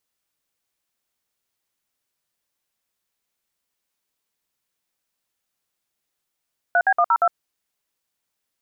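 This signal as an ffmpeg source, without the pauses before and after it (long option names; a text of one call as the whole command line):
ffmpeg -f lavfi -i "aevalsrc='0.15*clip(min(mod(t,0.117),0.06-mod(t,0.117))/0.002,0,1)*(eq(floor(t/0.117),0)*(sin(2*PI*697*mod(t,0.117))+sin(2*PI*1477*mod(t,0.117)))+eq(floor(t/0.117),1)*(sin(2*PI*770*mod(t,0.117))+sin(2*PI*1633*mod(t,0.117)))+eq(floor(t/0.117),2)*(sin(2*PI*697*mod(t,0.117))+sin(2*PI*1209*mod(t,0.117)))+eq(floor(t/0.117),3)*(sin(2*PI*941*mod(t,0.117))+sin(2*PI*1336*mod(t,0.117)))+eq(floor(t/0.117),4)*(sin(2*PI*697*mod(t,0.117))+sin(2*PI*1336*mod(t,0.117))))':duration=0.585:sample_rate=44100" out.wav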